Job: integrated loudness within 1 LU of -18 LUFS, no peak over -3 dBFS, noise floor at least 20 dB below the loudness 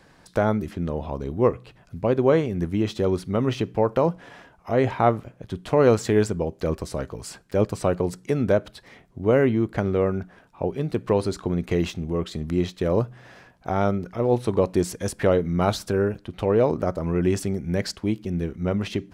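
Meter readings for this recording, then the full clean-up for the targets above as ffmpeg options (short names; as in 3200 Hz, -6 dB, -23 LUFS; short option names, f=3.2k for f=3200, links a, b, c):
loudness -24.0 LUFS; peak -4.5 dBFS; loudness target -18.0 LUFS
-> -af "volume=6dB,alimiter=limit=-3dB:level=0:latency=1"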